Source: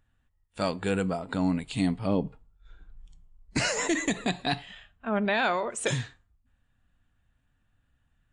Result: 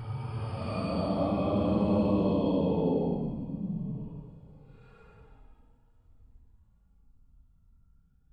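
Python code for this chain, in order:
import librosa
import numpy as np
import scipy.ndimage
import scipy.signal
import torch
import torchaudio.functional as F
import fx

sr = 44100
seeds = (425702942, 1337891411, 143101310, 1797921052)

y = fx.add_hum(x, sr, base_hz=50, snr_db=35)
y = fx.paulstretch(y, sr, seeds[0], factor=15.0, window_s=0.05, from_s=2.0)
y = y * 10.0 ** (-2.0 / 20.0)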